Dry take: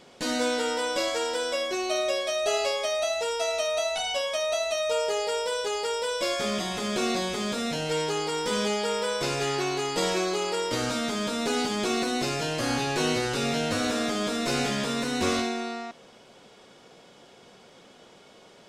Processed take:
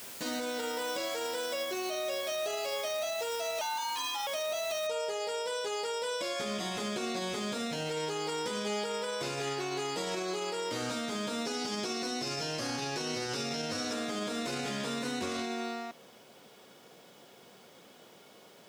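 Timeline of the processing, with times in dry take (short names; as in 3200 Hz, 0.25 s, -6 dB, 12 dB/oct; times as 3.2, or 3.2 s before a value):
3.61–4.27 frequency shift +270 Hz
4.87 noise floor step -42 dB -63 dB
11.45–13.93 bell 5400 Hz +11 dB 0.28 oct
whole clip: HPF 100 Hz 12 dB/oct; limiter -22.5 dBFS; gain -3.5 dB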